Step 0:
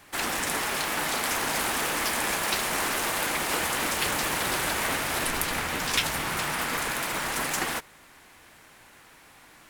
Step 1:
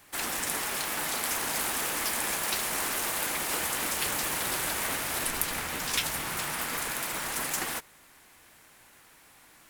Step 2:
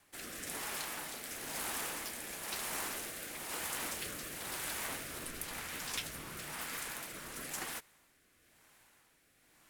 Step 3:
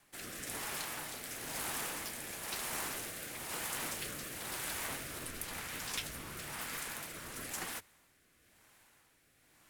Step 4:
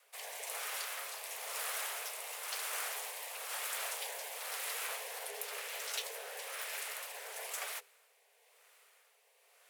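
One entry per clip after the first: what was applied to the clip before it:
treble shelf 6.8 kHz +8.5 dB; trim -5.5 dB
rotary cabinet horn 1 Hz; trim -7.5 dB
octave divider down 1 oct, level -4 dB
frequency shift +400 Hz

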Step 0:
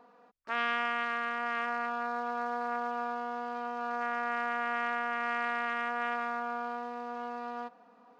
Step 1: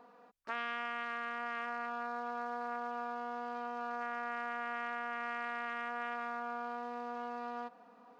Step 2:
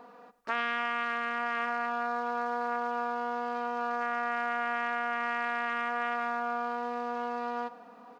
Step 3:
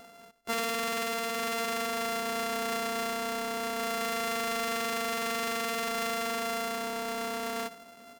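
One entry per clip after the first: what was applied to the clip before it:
compression 2.5:1, threshold -37 dBFS, peak gain reduction 8 dB
feedback delay 98 ms, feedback 34%, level -18 dB; trim +7.5 dB
sorted samples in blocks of 64 samples

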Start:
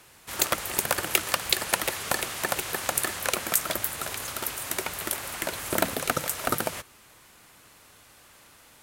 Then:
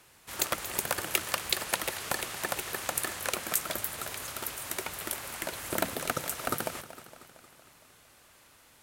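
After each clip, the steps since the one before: modulated delay 230 ms, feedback 60%, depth 81 cents, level -14.5 dB; trim -5 dB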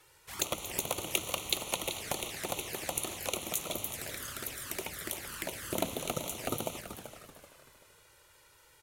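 touch-sensitive flanger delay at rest 2.4 ms, full sweep at -31.5 dBFS; frequency-shifting echo 383 ms, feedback 32%, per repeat -38 Hz, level -11 dB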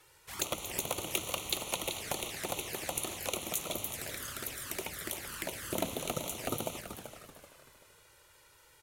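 saturation -18.5 dBFS, distortion -18 dB

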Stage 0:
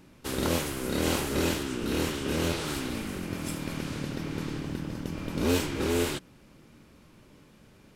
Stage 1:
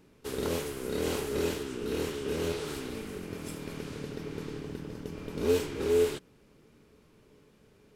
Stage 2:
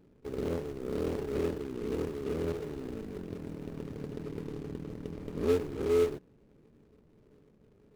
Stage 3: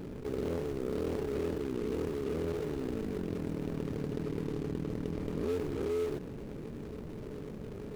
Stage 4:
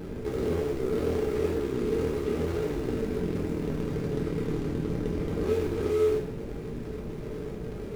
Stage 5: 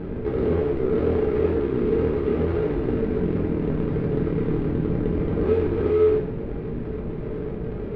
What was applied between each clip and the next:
peaking EQ 430 Hz +13.5 dB 0.21 oct; trim -6.5 dB
median filter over 41 samples
level flattener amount 70%; trim -8 dB
reverberation, pre-delay 3 ms, DRR -1.5 dB; trim +2.5 dB
distance through air 430 m; trim +7 dB

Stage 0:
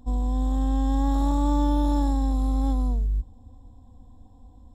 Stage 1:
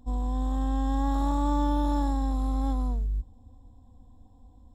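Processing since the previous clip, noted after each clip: dynamic bell 1.4 kHz, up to +6 dB, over -45 dBFS, Q 0.76; trim -4 dB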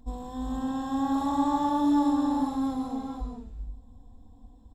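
hum notches 50/100/150/200/250 Hz; comb 4.5 ms, depth 33%; reverberation, pre-delay 3 ms, DRR 1.5 dB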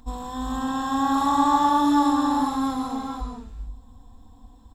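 FFT filter 630 Hz 0 dB, 1.2 kHz +11 dB, 2 kHz +8 dB; trim +2.5 dB

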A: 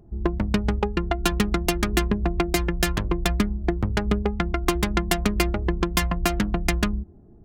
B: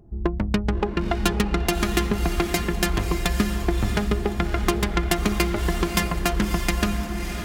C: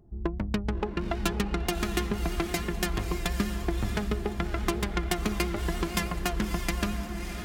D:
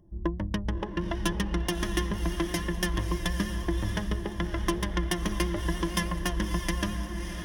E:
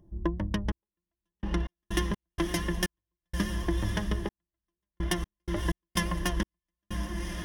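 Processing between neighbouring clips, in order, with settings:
echo that smears into a reverb 610 ms, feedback 42%, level -6 dB
vibrato 6.1 Hz 40 cents; trim -6.5 dB
rippled EQ curve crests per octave 1.2, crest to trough 11 dB; trim -2 dB
trance gate "xxx...x.x.xx..x" 63 bpm -60 dB

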